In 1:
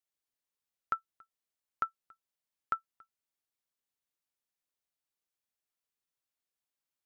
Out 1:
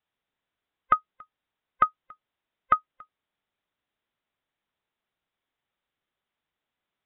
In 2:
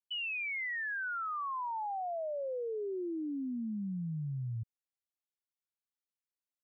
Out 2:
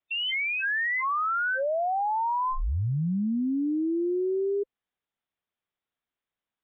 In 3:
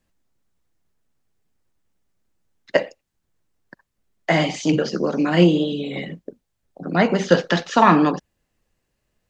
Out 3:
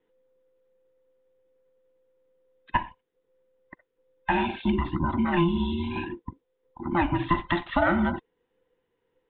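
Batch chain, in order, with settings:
every band turned upside down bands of 500 Hz; steep low-pass 3.7 kHz 96 dB/octave; peaking EQ 2.7 kHz -3 dB 0.5 oct; compression 2.5:1, threshold -20 dBFS; normalise loudness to -27 LUFS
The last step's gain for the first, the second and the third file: +12.0 dB, +10.0 dB, -2.0 dB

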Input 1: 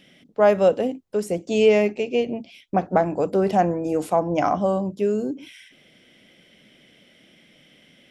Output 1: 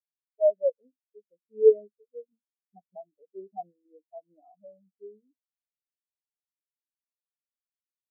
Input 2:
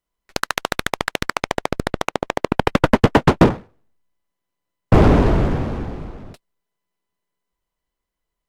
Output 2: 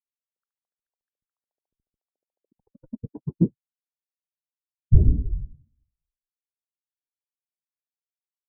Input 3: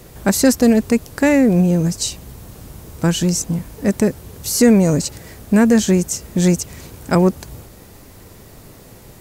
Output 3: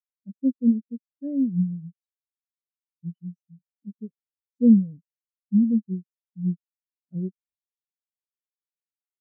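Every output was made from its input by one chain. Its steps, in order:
spectral contrast expander 4:1; normalise loudness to -24 LUFS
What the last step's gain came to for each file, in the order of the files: -2.5 dB, +2.5 dB, -5.0 dB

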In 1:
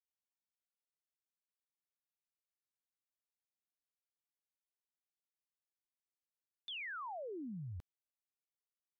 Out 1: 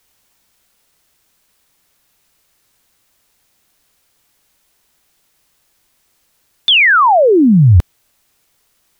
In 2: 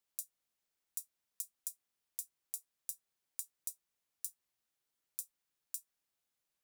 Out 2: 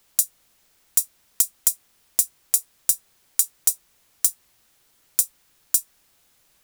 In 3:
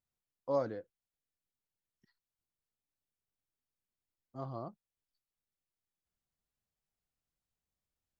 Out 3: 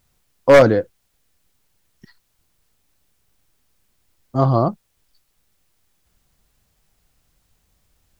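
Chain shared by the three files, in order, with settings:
bass shelf 97 Hz +7.5 dB; wavefolder -26.5 dBFS; peak normalisation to -2 dBFS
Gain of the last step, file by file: +35.0 dB, +24.5 dB, +24.5 dB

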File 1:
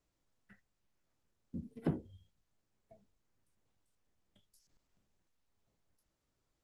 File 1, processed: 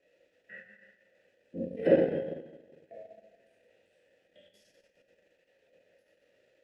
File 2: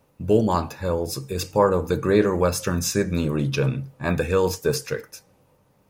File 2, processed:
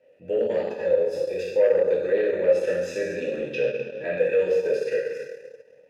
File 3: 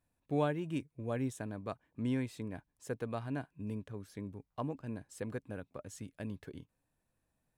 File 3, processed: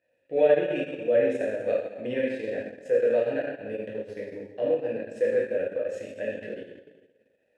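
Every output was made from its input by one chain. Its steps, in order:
plate-style reverb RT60 1.3 s, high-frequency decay 0.95×, DRR -6 dB; compression 1.5:1, threshold -26 dBFS; transient shaper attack -6 dB, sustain -10 dB; sine folder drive 4 dB, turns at -9 dBFS; vowel filter e; peak normalisation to -9 dBFS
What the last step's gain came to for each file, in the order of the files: +17.5 dB, +1.5 dB, +11.5 dB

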